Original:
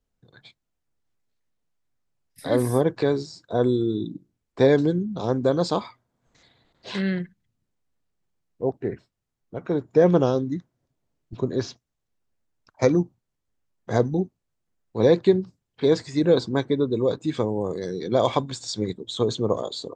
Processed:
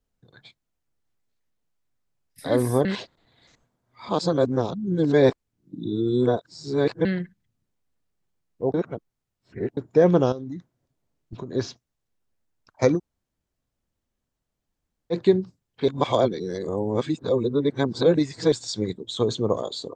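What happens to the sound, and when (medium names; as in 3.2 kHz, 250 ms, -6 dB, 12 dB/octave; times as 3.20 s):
2.85–7.05 s: reverse
8.74–9.77 s: reverse
10.32–11.55 s: compression, threshold -30 dBFS
12.97–15.13 s: room tone, crossfade 0.06 s
15.88–18.52 s: reverse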